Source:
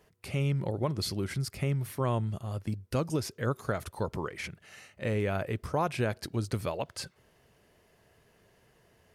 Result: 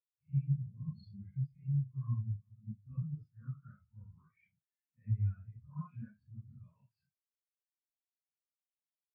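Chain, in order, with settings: phase scrambler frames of 0.2 s; LPF 4100 Hz 12 dB/oct; band shelf 500 Hz -13 dB; spectral expander 2.5:1; gain -3 dB

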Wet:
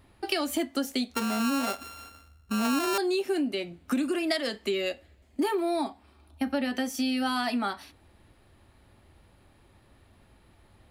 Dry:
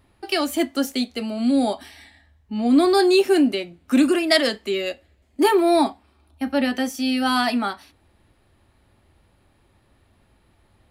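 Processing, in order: 1.14–2.98 sample sorter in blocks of 32 samples; compressor 8:1, threshold -26 dBFS, peak gain reduction 14.5 dB; gain +1 dB

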